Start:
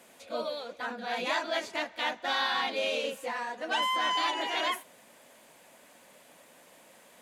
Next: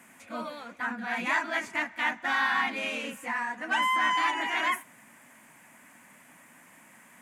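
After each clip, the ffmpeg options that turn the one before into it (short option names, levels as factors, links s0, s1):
-af "equalizer=f=125:t=o:w=1:g=6,equalizer=f=250:t=o:w=1:g=7,equalizer=f=500:t=o:w=1:g=-12,equalizer=f=1000:t=o:w=1:g=4,equalizer=f=2000:t=o:w=1:g=9,equalizer=f=4000:t=o:w=1:g=-12,equalizer=f=8000:t=o:w=1:g=4"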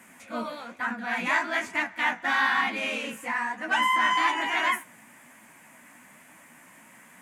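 -af "flanger=delay=8.9:depth=9.6:regen=46:speed=1.1:shape=triangular,volume=2.11"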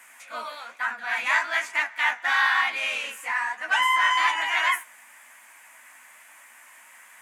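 -af "highpass=940,volume=1.5"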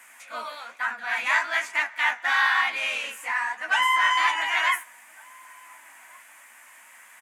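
-filter_complex "[0:a]asplit=2[s0][s1];[s1]adelay=1458,volume=0.0631,highshelf=f=4000:g=-32.8[s2];[s0][s2]amix=inputs=2:normalize=0"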